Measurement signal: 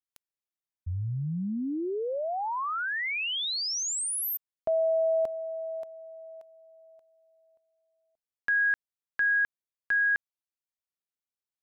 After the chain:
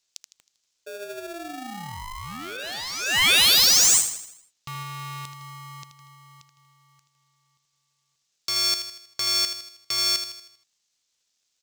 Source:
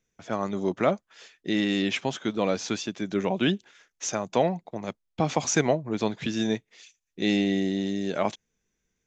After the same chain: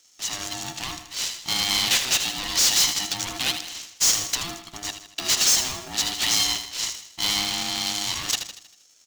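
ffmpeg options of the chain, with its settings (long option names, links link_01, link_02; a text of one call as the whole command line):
ffmpeg -i in.wav -filter_complex "[0:a]acompressor=threshold=-26dB:ratio=6:attack=3:release=20,aresample=16000,asoftclip=type=tanh:threshold=-26dB,aresample=44100,aexciter=amount=11.2:drive=9.8:freq=2700,asoftclip=type=hard:threshold=-12dB,asplit=2[link_01][link_02];[link_02]aecho=0:1:79|158|237|316|395|474:0.355|0.174|0.0852|0.0417|0.0205|0.01[link_03];[link_01][link_03]amix=inputs=2:normalize=0,aeval=exprs='val(0)*sgn(sin(2*PI*510*n/s))':channel_layout=same,volume=-4.5dB" out.wav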